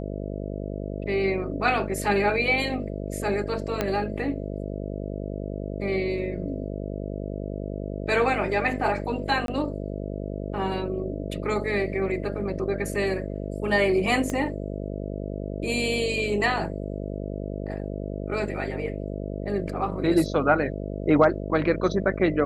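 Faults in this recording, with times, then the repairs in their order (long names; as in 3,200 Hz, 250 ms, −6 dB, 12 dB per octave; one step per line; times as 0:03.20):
mains buzz 50 Hz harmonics 13 −32 dBFS
0:03.81: click −10 dBFS
0:09.46–0:09.48: drop-out 22 ms
0:14.30: click −16 dBFS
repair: click removal
hum removal 50 Hz, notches 13
repair the gap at 0:09.46, 22 ms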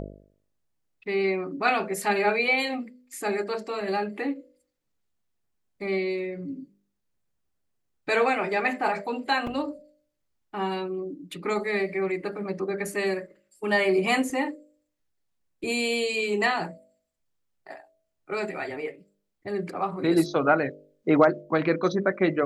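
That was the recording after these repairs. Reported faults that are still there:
0:03.81: click
0:14.30: click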